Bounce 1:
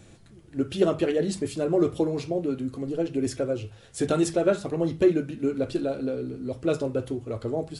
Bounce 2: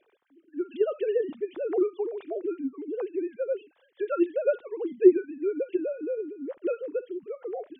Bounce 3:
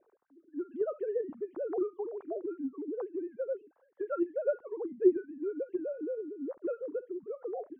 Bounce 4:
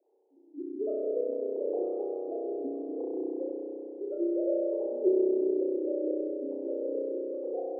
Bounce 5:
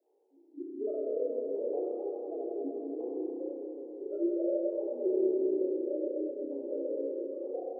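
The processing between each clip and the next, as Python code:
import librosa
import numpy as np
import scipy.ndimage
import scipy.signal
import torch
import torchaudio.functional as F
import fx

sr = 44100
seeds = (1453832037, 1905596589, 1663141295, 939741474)

y1 = fx.sine_speech(x, sr)
y1 = y1 * 10.0 ** (-2.0 / 20.0)
y2 = scipy.signal.sosfilt(scipy.signal.butter(4, 1300.0, 'lowpass', fs=sr, output='sos'), y1)
y2 = fx.dynamic_eq(y2, sr, hz=390.0, q=0.91, threshold_db=-34.0, ratio=4.0, max_db=-6)
y2 = y2 * 10.0 ** (-1.5 / 20.0)
y3 = scipy.signal.sosfilt(scipy.signal.ellip(3, 1.0, 40, [260.0, 810.0], 'bandpass', fs=sr, output='sos'), y2)
y3 = fx.rev_spring(y3, sr, rt60_s=3.8, pass_ms=(32,), chirp_ms=70, drr_db=-6.5)
y3 = y3 * 10.0 ** (-3.5 / 20.0)
y4 = fx.detune_double(y3, sr, cents=25)
y4 = y4 * 10.0 ** (1.5 / 20.0)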